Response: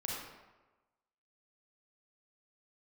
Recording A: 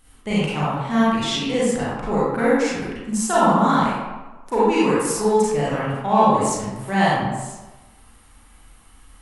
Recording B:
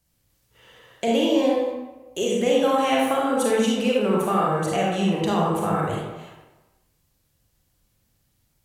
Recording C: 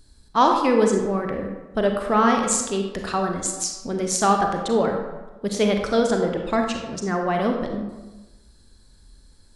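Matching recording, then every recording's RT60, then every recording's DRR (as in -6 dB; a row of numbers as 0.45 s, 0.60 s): B; 1.2 s, 1.2 s, 1.2 s; -9.0 dB, -4.0 dB, 2.5 dB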